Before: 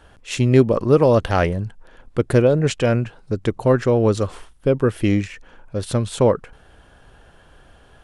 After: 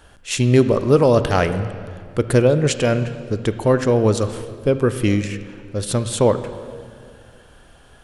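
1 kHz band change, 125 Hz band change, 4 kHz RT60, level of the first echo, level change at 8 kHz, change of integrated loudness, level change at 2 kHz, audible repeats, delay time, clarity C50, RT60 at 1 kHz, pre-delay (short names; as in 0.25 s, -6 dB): +0.5 dB, +0.5 dB, 1.9 s, none, +6.5 dB, +0.5 dB, +1.5 dB, none, none, 11.0 dB, 2.0 s, 23 ms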